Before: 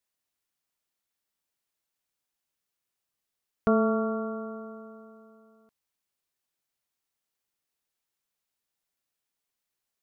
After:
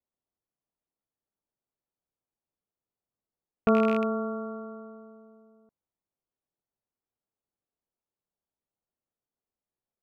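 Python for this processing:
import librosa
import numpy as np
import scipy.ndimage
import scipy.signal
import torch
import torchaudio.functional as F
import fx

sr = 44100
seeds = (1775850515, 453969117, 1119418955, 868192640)

y = fx.rattle_buzz(x, sr, strikes_db=-31.0, level_db=-25.0)
y = fx.env_lowpass(y, sr, base_hz=750.0, full_db=-28.5)
y = y * 10.0 ** (1.0 / 20.0)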